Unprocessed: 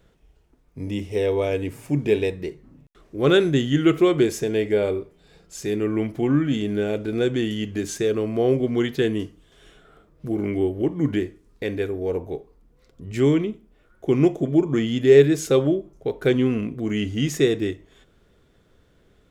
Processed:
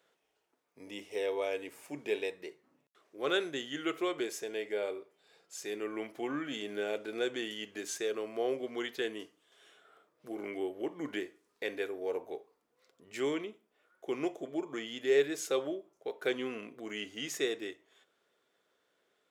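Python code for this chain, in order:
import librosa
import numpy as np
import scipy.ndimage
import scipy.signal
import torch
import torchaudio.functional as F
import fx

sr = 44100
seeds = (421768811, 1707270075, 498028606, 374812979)

y = scipy.signal.sosfilt(scipy.signal.butter(2, 550.0, 'highpass', fs=sr, output='sos'), x)
y = fx.rider(y, sr, range_db=3, speed_s=2.0)
y = F.gain(torch.from_numpy(y), -7.5).numpy()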